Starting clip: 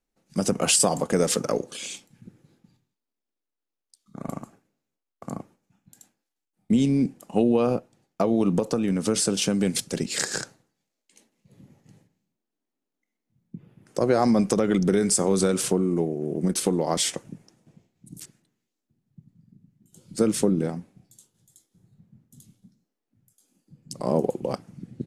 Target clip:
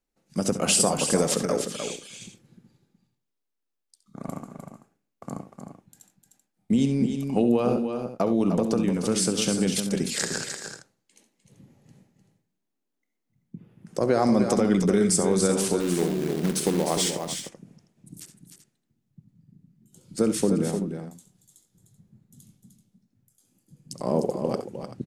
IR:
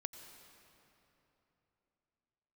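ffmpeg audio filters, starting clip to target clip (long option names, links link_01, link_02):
-filter_complex "[0:a]asettb=1/sr,asplit=3[link_01][link_02][link_03];[link_01]atrim=end=15.804[link_04];[link_02]atrim=start=15.8:end=17.11,asetpts=PTS-STARTPTS,afade=type=in:duration=0.004:curve=qsin,afade=type=out:start_time=1.306:duration=0.004:curve=qsin,acrusher=bits=3:mode=log:mix=0:aa=0.000001[link_05];[link_03]atrim=start=17.106[link_06];[link_04][link_05]acrossfade=duration=0.004:curve1=hsin:curve2=qsin[link_07];[link_07][link_06]acrossfade=duration=0.004:curve1=qsin:curve2=hsin,aecho=1:1:67|88|299|304|384:0.266|0.112|0.119|0.422|0.2,volume=-1.5dB"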